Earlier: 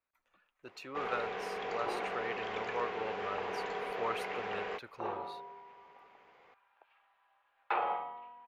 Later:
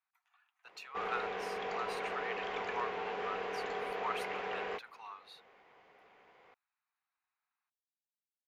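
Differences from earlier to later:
speech: add brick-wall FIR high-pass 680 Hz; second sound: muted

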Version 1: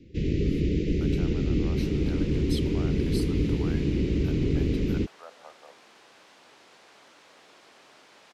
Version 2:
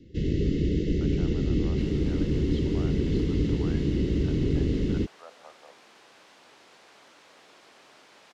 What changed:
speech: add distance through air 360 m; first sound: add Butterworth band-stop 2.4 kHz, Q 6.7

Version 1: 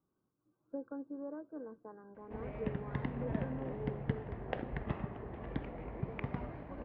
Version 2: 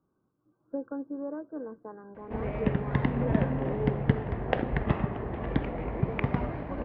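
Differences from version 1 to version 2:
speech +7.5 dB; background +11.0 dB

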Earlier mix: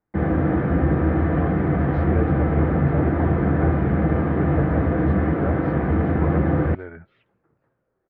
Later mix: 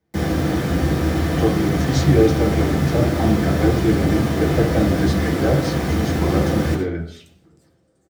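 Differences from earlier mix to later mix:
speech: send on; second sound: send on; master: remove low-pass 1.8 kHz 24 dB/octave

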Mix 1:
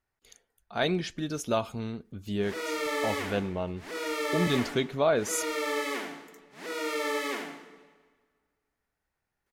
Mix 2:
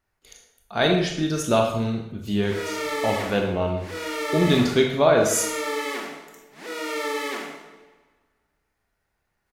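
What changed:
speech +3.0 dB; reverb: on, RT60 0.75 s

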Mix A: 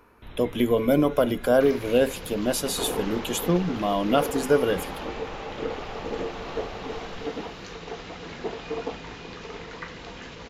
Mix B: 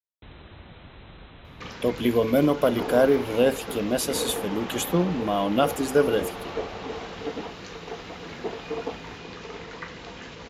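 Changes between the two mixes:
speech: entry +1.45 s; master: add high-pass 48 Hz

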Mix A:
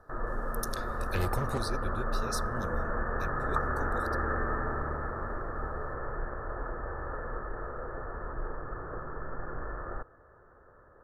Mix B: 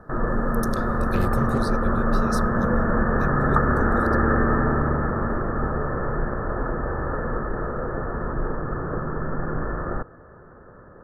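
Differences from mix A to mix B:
background +8.5 dB; master: add peaking EQ 190 Hz +12 dB 1.4 oct

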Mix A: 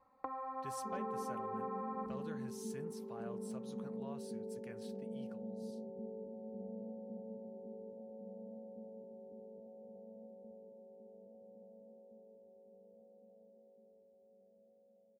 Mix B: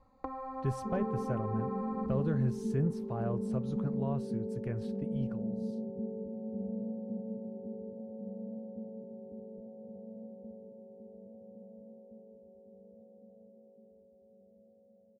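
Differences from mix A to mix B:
speech +8.5 dB; first sound: remove low-pass 1.6 kHz 12 dB/octave; master: add tilt EQ -4.5 dB/octave

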